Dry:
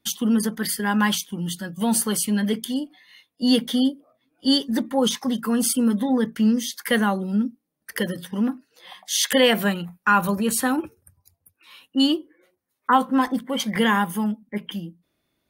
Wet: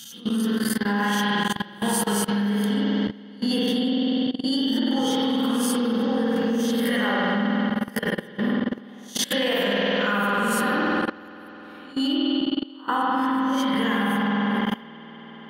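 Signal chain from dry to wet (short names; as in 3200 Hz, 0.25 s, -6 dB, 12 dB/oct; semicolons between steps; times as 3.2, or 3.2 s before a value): spectral swells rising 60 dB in 0.34 s; spring tank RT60 4 s, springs 49 ms, chirp 35 ms, DRR -7.5 dB; level quantiser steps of 19 dB; gain -3.5 dB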